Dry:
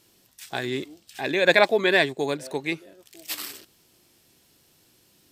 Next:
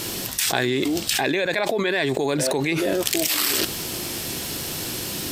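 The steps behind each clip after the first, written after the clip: fast leveller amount 100%; gain -8.5 dB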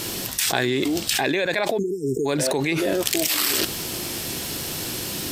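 spectral delete 1.78–2.26, 490–5100 Hz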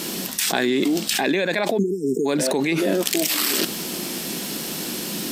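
resonant low shelf 140 Hz -11 dB, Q 3

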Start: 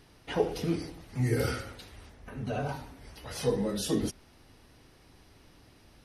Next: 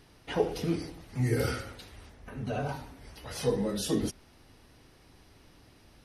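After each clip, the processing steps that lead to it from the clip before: nothing audible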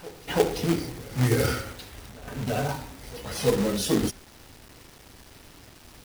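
reverse echo 0.334 s -20 dB; companded quantiser 4-bit; gain +5 dB

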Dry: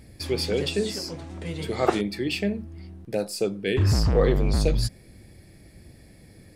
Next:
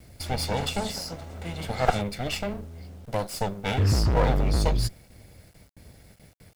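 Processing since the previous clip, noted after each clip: minimum comb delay 1.4 ms; gate with hold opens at -41 dBFS; bit-crush 10-bit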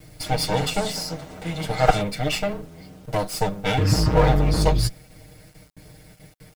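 comb 6.5 ms, depth 90%; gain +2.5 dB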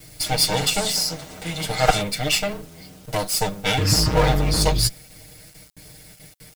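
high shelf 2400 Hz +11.5 dB; gain -1.5 dB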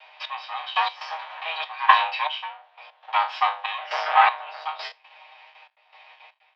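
spectral trails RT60 0.30 s; step gate "xx....x.xxxxx..x" 119 bpm -12 dB; mistuned SSB +310 Hz 380–3100 Hz; gain +3.5 dB

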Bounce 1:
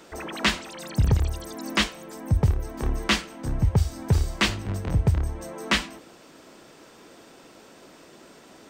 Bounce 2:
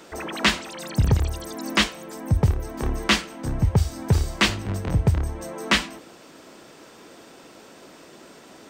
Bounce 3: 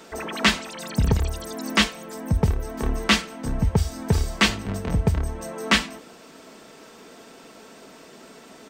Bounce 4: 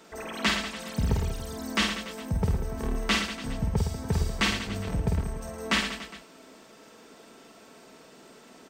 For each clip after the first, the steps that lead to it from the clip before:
low shelf 61 Hz -5.5 dB; gain +3 dB
comb 4.5 ms, depth 40%
reverse bouncing-ball echo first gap 50 ms, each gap 1.25×, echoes 5; gain -7.5 dB

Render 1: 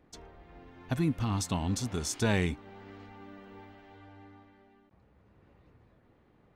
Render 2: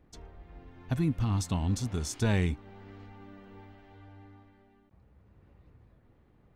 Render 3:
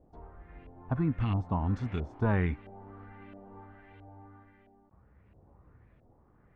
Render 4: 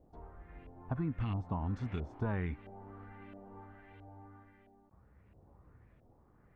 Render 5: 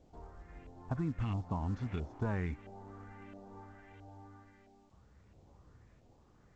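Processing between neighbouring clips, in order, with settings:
low shelf 130 Hz +11 dB; gain -3 dB
LFO low-pass saw up 1.5 Hz 620–2700 Hz; gain -1 dB
compressor 2.5:1, threshold -31 dBFS, peak gain reduction 6.5 dB; gain -2 dB
µ-law 128 kbps 16000 Hz

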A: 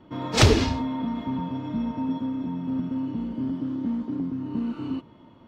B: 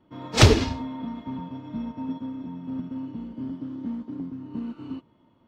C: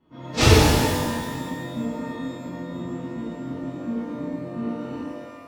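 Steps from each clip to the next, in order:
upward expander 1.5:1, over -38 dBFS; gain +3 dB
high shelf 10000 Hz -4.5 dB; in parallel at -6 dB: wavefolder -13.5 dBFS; on the sum: shimmer reverb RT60 1.5 s, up +12 st, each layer -8 dB, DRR -9.5 dB; gain -9.5 dB

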